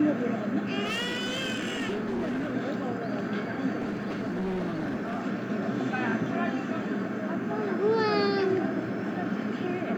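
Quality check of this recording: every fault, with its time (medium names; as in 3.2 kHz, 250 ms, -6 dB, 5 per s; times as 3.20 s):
0.84–2.51 s: clipped -26.5 dBFS
3.79–5.22 s: clipped -27 dBFS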